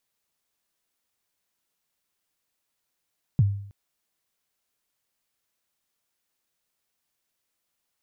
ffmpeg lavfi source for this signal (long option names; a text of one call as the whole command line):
ffmpeg -f lavfi -i "aevalsrc='0.224*pow(10,-3*t/0.62)*sin(2*PI*(160*0.033/log(100/160)*(exp(log(100/160)*min(t,0.033)/0.033)-1)+100*max(t-0.033,0)))':duration=0.32:sample_rate=44100" out.wav